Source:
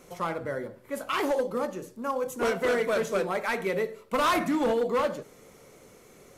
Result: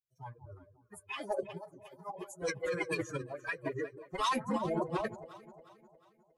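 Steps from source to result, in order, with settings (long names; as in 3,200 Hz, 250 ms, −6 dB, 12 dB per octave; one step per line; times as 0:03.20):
spectral dynamics exaggerated over time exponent 3
delay that swaps between a low-pass and a high-pass 179 ms, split 890 Hz, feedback 66%, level −13 dB
phase-vocoder pitch shift with formants kept −5.5 semitones
level −2 dB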